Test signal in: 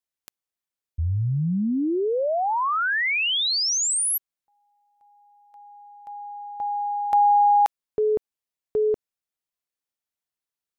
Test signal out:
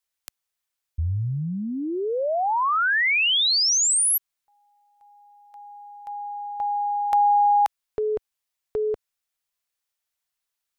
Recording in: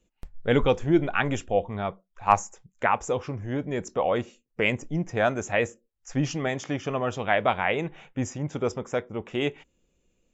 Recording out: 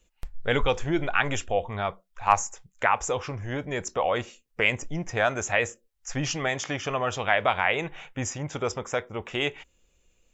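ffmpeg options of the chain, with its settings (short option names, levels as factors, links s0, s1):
-filter_complex "[0:a]equalizer=f=230:t=o:w=2.5:g=-11.5,asplit=2[s0][s1];[s1]acompressor=threshold=0.02:ratio=6:attack=27:release=54:knee=6:detection=rms,volume=1.26[s2];[s0][s2]amix=inputs=2:normalize=0"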